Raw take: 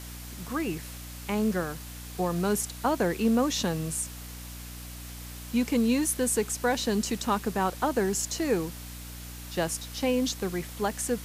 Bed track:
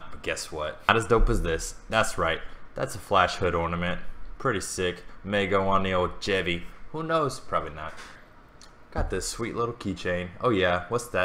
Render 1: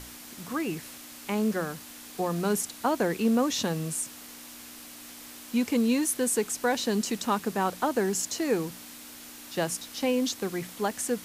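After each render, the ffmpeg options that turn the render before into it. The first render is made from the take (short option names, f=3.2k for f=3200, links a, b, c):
-af "bandreject=f=60:t=h:w=6,bandreject=f=120:t=h:w=6,bandreject=f=180:t=h:w=6"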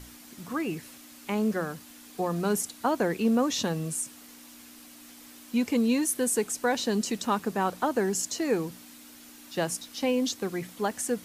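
-af "afftdn=nr=6:nf=-46"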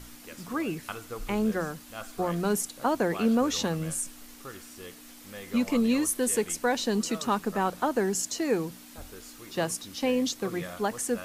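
-filter_complex "[1:a]volume=-17.5dB[a];[0:a][a]amix=inputs=2:normalize=0"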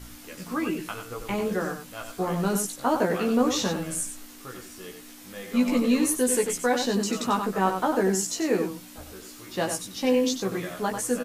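-filter_complex "[0:a]asplit=2[a][b];[b]adelay=16,volume=-3dB[c];[a][c]amix=inputs=2:normalize=0,asplit=2[d][e];[e]adelay=93.29,volume=-7dB,highshelf=f=4k:g=-2.1[f];[d][f]amix=inputs=2:normalize=0"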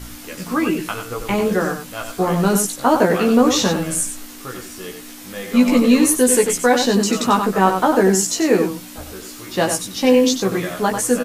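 -af "volume=9dB,alimiter=limit=-2dB:level=0:latency=1"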